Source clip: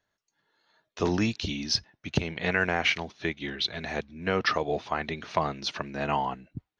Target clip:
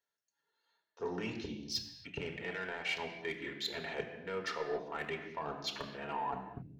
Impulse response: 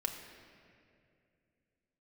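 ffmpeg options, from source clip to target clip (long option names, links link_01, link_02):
-filter_complex "[0:a]afwtdn=0.0158,highpass=frequency=240:poles=1,highshelf=frequency=4900:gain=8,areverse,acompressor=threshold=-40dB:ratio=6,areverse,aeval=exprs='0.0473*(cos(1*acos(clip(val(0)/0.0473,-1,1)))-cos(1*PI/2))+0.00335*(cos(5*acos(clip(val(0)/0.0473,-1,1)))-cos(5*PI/2))':channel_layout=same[link_01];[1:a]atrim=start_sample=2205,afade=type=out:start_time=0.33:duration=0.01,atrim=end_sample=14994[link_02];[link_01][link_02]afir=irnorm=-1:irlink=0,volume=1dB"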